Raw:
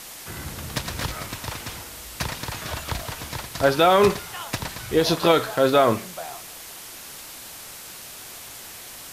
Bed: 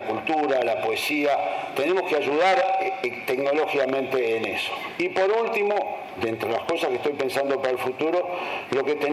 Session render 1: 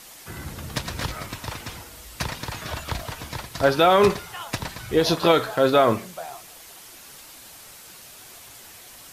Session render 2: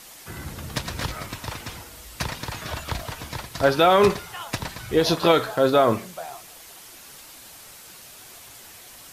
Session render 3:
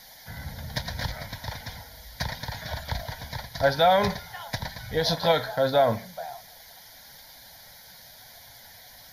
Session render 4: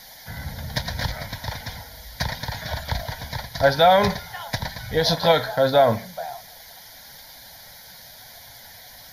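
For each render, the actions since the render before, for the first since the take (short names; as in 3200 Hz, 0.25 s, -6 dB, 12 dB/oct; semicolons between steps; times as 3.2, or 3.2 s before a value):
denoiser 6 dB, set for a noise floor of -40 dBFS
5.52–5.93 bell 2300 Hz -4 dB 1.2 oct
fixed phaser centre 1800 Hz, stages 8
gain +4.5 dB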